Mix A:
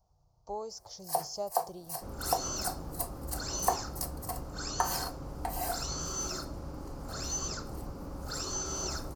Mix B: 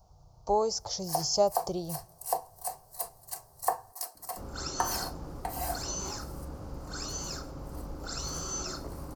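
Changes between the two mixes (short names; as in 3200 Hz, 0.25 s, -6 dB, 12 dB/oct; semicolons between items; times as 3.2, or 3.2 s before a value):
speech +12.0 dB; second sound: entry +2.35 s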